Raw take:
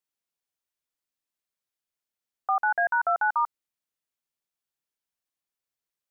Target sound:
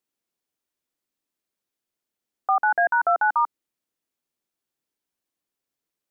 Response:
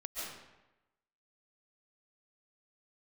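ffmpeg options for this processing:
-af "equalizer=f=300:t=o:w=1.6:g=9,volume=2.5dB"

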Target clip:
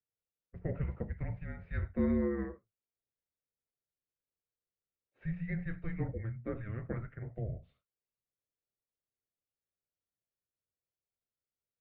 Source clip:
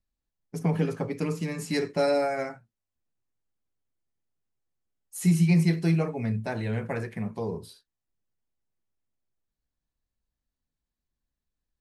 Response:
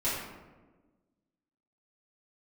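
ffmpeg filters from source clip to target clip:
-af "highpass=f=240:t=q:w=0.5412,highpass=f=240:t=q:w=1.307,lowpass=f=2.6k:t=q:w=0.5176,lowpass=f=2.6k:t=q:w=0.7071,lowpass=f=2.6k:t=q:w=1.932,afreqshift=-340,equalizer=f=125:t=o:w=1:g=4,equalizer=f=500:t=o:w=1:g=9,equalizer=f=1k:t=o:w=1:g=-8,volume=-8dB"

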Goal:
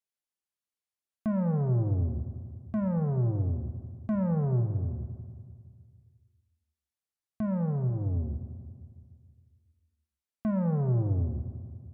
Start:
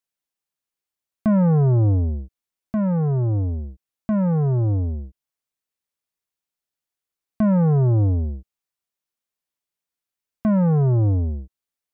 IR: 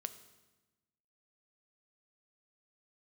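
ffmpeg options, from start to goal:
-filter_complex "[0:a]asettb=1/sr,asplit=3[a][b][c];[a]atrim=end=4.604[d];[b]atrim=start=4.6:end=7.9,asetpts=PTS-STARTPTS,afade=t=in:d=0.004:c=qsin,afade=t=out:st=3.296:d=0.004:c=qsin,equalizer=f=110:w=3.8:g=9[e];[c]atrim=start=7.896[f];[d][e]acrossfade=d=0.004:c1=hsin:c2=qsin[g];[g][f]acrossfade=d=0.004:c1=qsin:c2=hsin,alimiter=limit=-18dB:level=0:latency=1:release=438[h];[1:a]atrim=start_sample=2205,asetrate=24255,aresample=44100[i];[h][i]afir=irnorm=-1:irlink=0,volume=-8dB"

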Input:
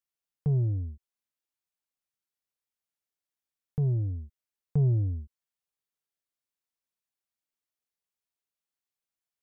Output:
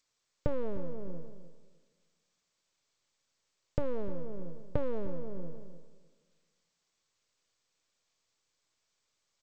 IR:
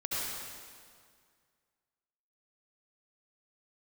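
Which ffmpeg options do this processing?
-filter_complex "[0:a]aeval=exprs='abs(val(0))':c=same,asuperstop=centerf=760:order=8:qfactor=5,bandreject=f=50:t=h:w=6,bandreject=f=100:t=h:w=6,bandreject=f=150:t=h:w=6,asplit=2[a][b];[b]adelay=304,lowpass=f=860:p=1,volume=-9dB,asplit=2[c][d];[d]adelay=304,lowpass=f=860:p=1,volume=0.17,asplit=2[e][f];[f]adelay=304,lowpass=f=860:p=1,volume=0.17[g];[a][c][e][g]amix=inputs=4:normalize=0,asplit=2[h][i];[1:a]atrim=start_sample=2205,asetrate=52920,aresample=44100,adelay=36[j];[i][j]afir=irnorm=-1:irlink=0,volume=-22.5dB[k];[h][k]amix=inputs=2:normalize=0,acompressor=threshold=-35dB:ratio=6,equalizer=f=125:t=o:w=1:g=8,equalizer=f=250:t=o:w=1:g=-9,equalizer=f=500:t=o:w=1:g=10,volume=7.5dB" -ar 16000 -c:a g722

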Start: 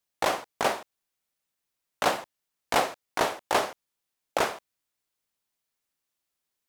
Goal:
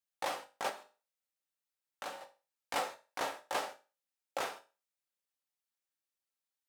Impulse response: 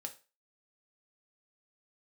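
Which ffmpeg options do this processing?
-filter_complex "[0:a]lowshelf=f=330:g=-8.5[a];[1:a]atrim=start_sample=2205[b];[a][b]afir=irnorm=-1:irlink=0,asettb=1/sr,asplit=3[c][d][e];[c]atrim=end=0.694[f];[d]atrim=start=0.69:end=2.21,asetpts=PTS-STARTPTS,afade=t=in:d=0.004:c=qsin,afade=t=out:st=1.516:d=0.004:c=qsin,acompressor=threshold=-39dB:ratio=2[g];[e]atrim=start=2.206[h];[f][g]acrossfade=d=0.004:c1=hsin:c2=qsin[i];[i][h]acrossfade=d=0.004:c1=qsin:c2=hsin,volume=-6.5dB"

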